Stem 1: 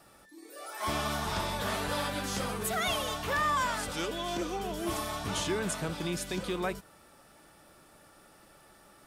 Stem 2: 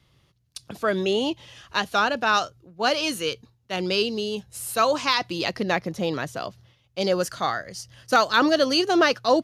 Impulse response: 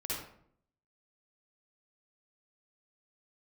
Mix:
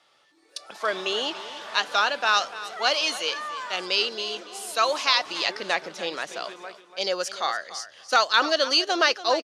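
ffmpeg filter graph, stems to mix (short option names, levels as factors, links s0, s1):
-filter_complex "[0:a]volume=0.562,asplit=2[s0][s1];[s1]volume=0.299[s2];[1:a]highshelf=f=3300:g=10.5,volume=0.794,asplit=2[s3][s4];[s4]volume=0.178[s5];[s2][s5]amix=inputs=2:normalize=0,aecho=0:1:288|576|864:1|0.16|0.0256[s6];[s0][s3][s6]amix=inputs=3:normalize=0,highpass=520,lowpass=5500"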